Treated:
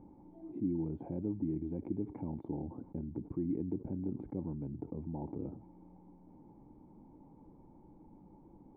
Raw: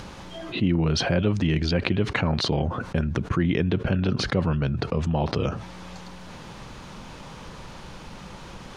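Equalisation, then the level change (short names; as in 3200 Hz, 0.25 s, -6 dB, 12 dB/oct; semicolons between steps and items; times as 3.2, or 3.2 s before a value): vocal tract filter u; -5.0 dB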